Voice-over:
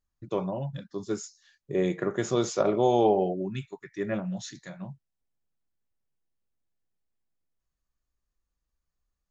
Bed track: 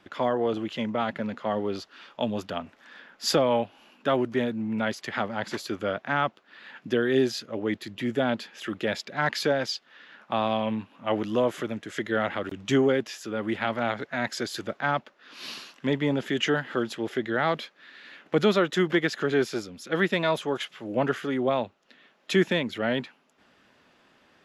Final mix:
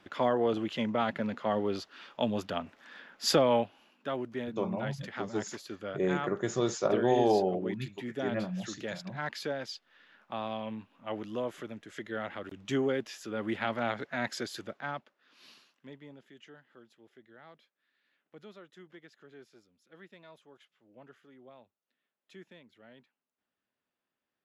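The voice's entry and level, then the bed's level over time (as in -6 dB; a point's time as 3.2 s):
4.25 s, -3.5 dB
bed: 3.59 s -2 dB
3.95 s -10.5 dB
12.28 s -10.5 dB
13.43 s -4.5 dB
14.31 s -4.5 dB
16.42 s -29 dB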